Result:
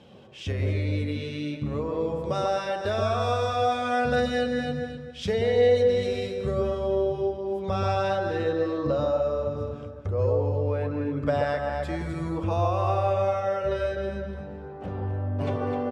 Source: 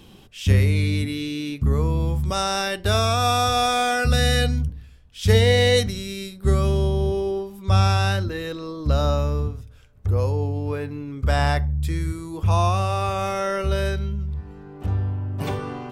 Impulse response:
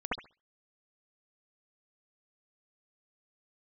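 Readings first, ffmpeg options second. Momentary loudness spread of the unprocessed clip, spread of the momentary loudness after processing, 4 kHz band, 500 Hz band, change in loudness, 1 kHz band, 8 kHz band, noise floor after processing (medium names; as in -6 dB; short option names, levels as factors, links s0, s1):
11 LU, 8 LU, -11.5 dB, +1.0 dB, -4.5 dB, -4.0 dB, under -15 dB, -40 dBFS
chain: -filter_complex "[0:a]dynaudnorm=f=710:g=9:m=2.37,aecho=1:1:256|512|768:0.299|0.0746|0.0187,flanger=delay=1.3:depth=9.2:regen=-49:speed=0.15:shape=triangular,highpass=110,lowpass=6500,equalizer=f=570:w=3.3:g=10,acompressor=threshold=0.0398:ratio=3,bass=f=250:g=-2,treble=f=4000:g=-5,asplit=2[s0][s1];[1:a]atrim=start_sample=2205,asetrate=22491,aresample=44100,lowpass=2500[s2];[s1][s2]afir=irnorm=-1:irlink=0,volume=0.237[s3];[s0][s3]amix=inputs=2:normalize=0"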